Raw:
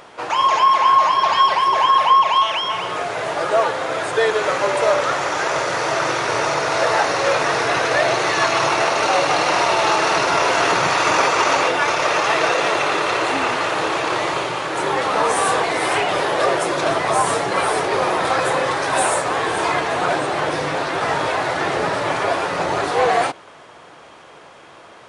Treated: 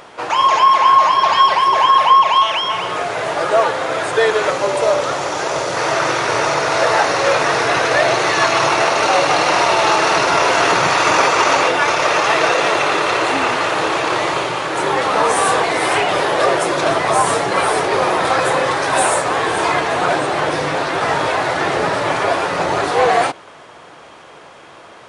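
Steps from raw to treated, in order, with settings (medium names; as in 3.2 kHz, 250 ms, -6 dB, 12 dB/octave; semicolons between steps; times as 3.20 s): 4.50–5.77 s: peaking EQ 1.7 kHz -6 dB 1.5 oct; trim +3 dB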